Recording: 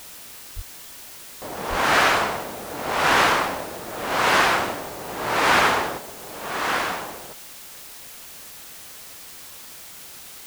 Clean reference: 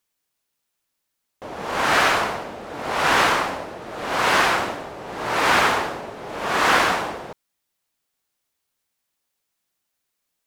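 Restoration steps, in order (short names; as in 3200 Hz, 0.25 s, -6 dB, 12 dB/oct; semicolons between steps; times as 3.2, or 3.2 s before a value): de-plosive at 0.55/1.69; noise print and reduce 30 dB; gain correction +6.5 dB, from 5.98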